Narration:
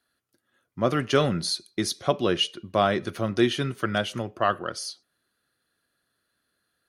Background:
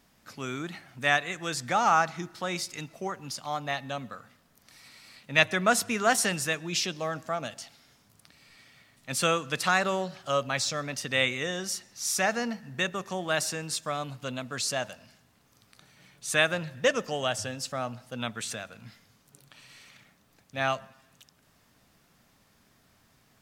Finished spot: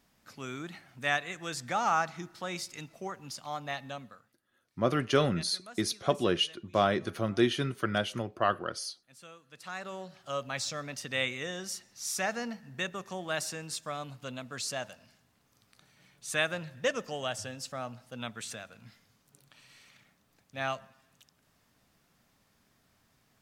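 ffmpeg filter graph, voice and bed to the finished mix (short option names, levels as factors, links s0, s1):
-filter_complex "[0:a]adelay=4000,volume=0.631[s0];[1:a]volume=5.96,afade=t=out:st=3.87:d=0.48:silence=0.0891251,afade=t=in:st=9.48:d=1.16:silence=0.0944061[s1];[s0][s1]amix=inputs=2:normalize=0"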